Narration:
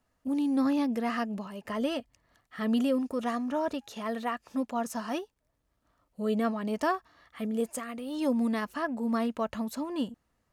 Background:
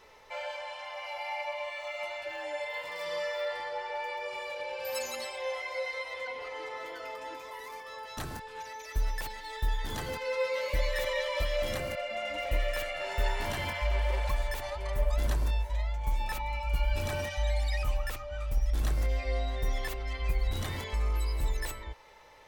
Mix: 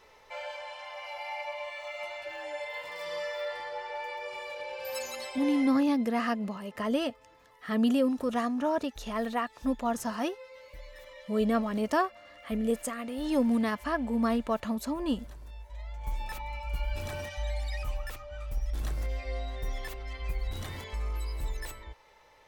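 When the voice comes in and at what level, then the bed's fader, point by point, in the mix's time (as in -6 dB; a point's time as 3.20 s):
5.10 s, +1.5 dB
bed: 5.64 s -1.5 dB
5.85 s -18 dB
15.45 s -18 dB
16.08 s -4 dB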